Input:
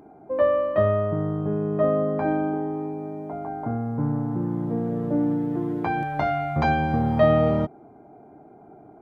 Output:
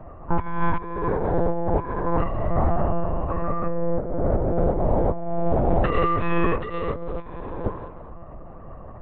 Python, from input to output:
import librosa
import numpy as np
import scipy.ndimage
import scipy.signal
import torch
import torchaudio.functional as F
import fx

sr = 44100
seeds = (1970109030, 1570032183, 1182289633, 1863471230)

y = fx.octave_divider(x, sr, octaves=1, level_db=3.0)
y = fx.high_shelf(y, sr, hz=2200.0, db=5.5)
y = fx.echo_thinned(y, sr, ms=221, feedback_pct=26, hz=250.0, wet_db=-21)
y = y * np.sin(2.0 * np.pi * 420.0 * np.arange(len(y)) / sr)
y = fx.over_compress(y, sr, threshold_db=-27.0, ratio=-0.5)
y = fx.lpc_monotone(y, sr, seeds[0], pitch_hz=170.0, order=10)
y = fx.low_shelf(y, sr, hz=76.0, db=6.5)
y = y * librosa.db_to_amplitude(3.5)